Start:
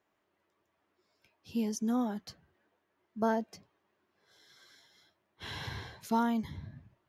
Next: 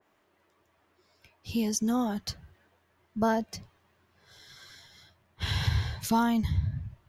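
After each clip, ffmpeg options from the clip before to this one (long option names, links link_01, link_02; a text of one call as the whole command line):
ffmpeg -i in.wav -filter_complex "[0:a]asubboost=boost=8:cutoff=110,asplit=2[link_01][link_02];[link_02]acompressor=threshold=-40dB:ratio=6,volume=1dB[link_03];[link_01][link_03]amix=inputs=2:normalize=0,adynamicequalizer=threshold=0.00251:dfrequency=2400:dqfactor=0.7:tfrequency=2400:tqfactor=0.7:attack=5:release=100:ratio=0.375:range=2:mode=boostabove:tftype=highshelf,volume=2.5dB" out.wav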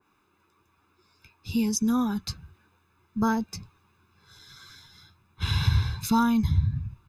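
ffmpeg -i in.wav -af "aecho=1:1:0.8:0.83" out.wav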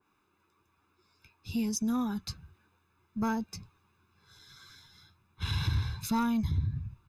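ffmpeg -i in.wav -af "asoftclip=type=tanh:threshold=-15.5dB,volume=-5dB" out.wav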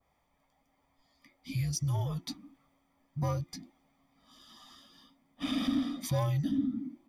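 ffmpeg -i in.wav -af "afreqshift=-360,volume=-1dB" out.wav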